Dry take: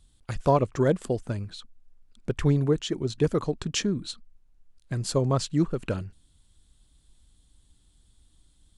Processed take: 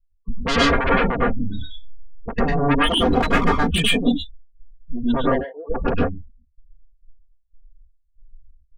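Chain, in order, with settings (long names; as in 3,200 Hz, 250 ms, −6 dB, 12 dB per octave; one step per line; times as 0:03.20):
noise gate with hold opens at −49 dBFS
linear-prediction vocoder at 8 kHz pitch kept
0:05.29–0:05.70: elliptic band-pass filter 450–930 Hz, stop band 40 dB
gate on every frequency bin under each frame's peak −10 dB strong
soft clipping −15.5 dBFS, distortion −17 dB
0:01.38–0:02.33: flutter between parallel walls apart 4.8 metres, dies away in 0.21 s
sine wavefolder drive 14 dB, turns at −15.5 dBFS
0:02.86–0:03.62: leveller curve on the samples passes 1
comb filter 4.3 ms, depth 61%
convolution reverb, pre-delay 98 ms, DRR −4.5 dB
every ending faded ahead of time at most 130 dB per second
level −4.5 dB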